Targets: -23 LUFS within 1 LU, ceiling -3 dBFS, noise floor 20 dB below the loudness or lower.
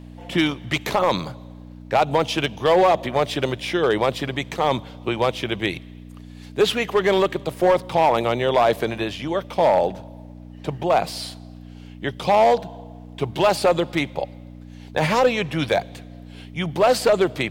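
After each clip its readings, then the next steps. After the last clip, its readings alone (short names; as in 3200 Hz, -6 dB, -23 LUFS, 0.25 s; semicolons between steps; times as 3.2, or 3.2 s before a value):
clipped 0.9%; flat tops at -10.5 dBFS; hum 60 Hz; harmonics up to 300 Hz; hum level -38 dBFS; loudness -21.5 LUFS; peak -10.5 dBFS; loudness target -23.0 LUFS
-> clip repair -10.5 dBFS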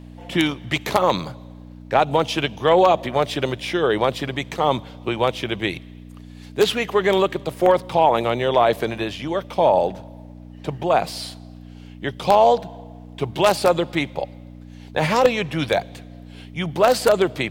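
clipped 0.0%; hum 60 Hz; harmonics up to 300 Hz; hum level -38 dBFS
-> de-hum 60 Hz, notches 5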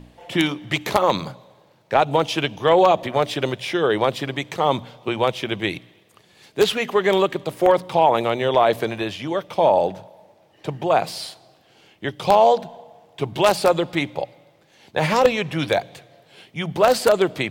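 hum none; loudness -20.5 LUFS; peak -1.5 dBFS; loudness target -23.0 LUFS
-> gain -2.5 dB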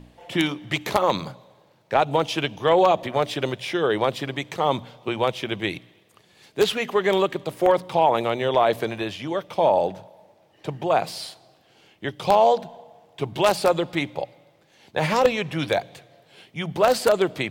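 loudness -23.0 LUFS; peak -4.0 dBFS; noise floor -59 dBFS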